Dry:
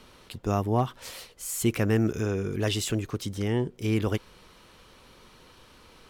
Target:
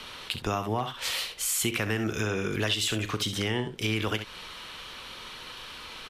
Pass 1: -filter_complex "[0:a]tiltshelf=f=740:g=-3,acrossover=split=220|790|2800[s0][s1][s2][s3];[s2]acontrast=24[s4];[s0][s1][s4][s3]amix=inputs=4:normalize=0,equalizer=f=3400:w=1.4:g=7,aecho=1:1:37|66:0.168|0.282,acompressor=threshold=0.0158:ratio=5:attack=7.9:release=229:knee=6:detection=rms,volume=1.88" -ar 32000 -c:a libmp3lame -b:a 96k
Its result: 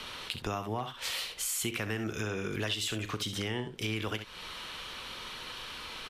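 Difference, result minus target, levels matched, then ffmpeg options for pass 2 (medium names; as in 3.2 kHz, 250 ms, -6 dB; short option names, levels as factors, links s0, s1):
compression: peak gain reduction +5.5 dB
-filter_complex "[0:a]tiltshelf=f=740:g=-3,acrossover=split=220|790|2800[s0][s1][s2][s3];[s2]acontrast=24[s4];[s0][s1][s4][s3]amix=inputs=4:normalize=0,equalizer=f=3400:w=1.4:g=7,aecho=1:1:37|66:0.168|0.282,acompressor=threshold=0.0355:ratio=5:attack=7.9:release=229:knee=6:detection=rms,volume=1.88" -ar 32000 -c:a libmp3lame -b:a 96k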